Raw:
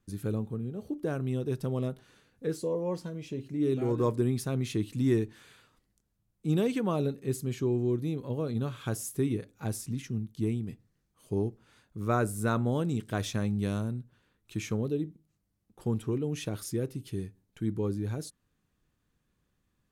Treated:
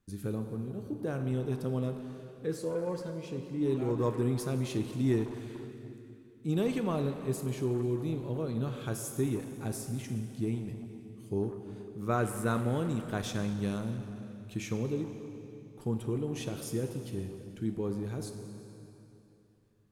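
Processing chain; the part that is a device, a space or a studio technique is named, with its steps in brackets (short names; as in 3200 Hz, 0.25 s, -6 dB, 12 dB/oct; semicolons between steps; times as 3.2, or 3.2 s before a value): saturated reverb return (on a send at -3.5 dB: reverb RT60 2.8 s, pre-delay 11 ms + soft clip -30 dBFS, distortion -11 dB); on the sum: gain -2.5 dB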